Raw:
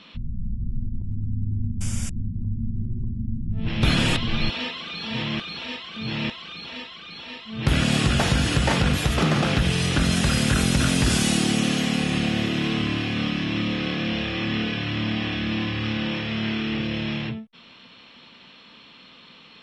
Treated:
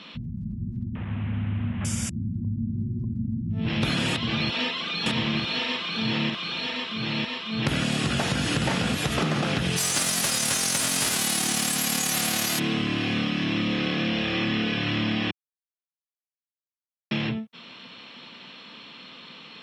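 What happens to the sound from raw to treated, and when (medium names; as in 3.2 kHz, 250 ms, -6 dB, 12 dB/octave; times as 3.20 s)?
0.95–1.85 s: one-bit delta coder 16 kbps, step -37 dBFS
4.11–8.95 s: delay 950 ms -4 dB
9.76–12.58 s: formants flattened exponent 0.3
15.31–17.11 s: mute
whole clip: high-pass 120 Hz 12 dB/octave; compression, threshold -26 dBFS; trim +4 dB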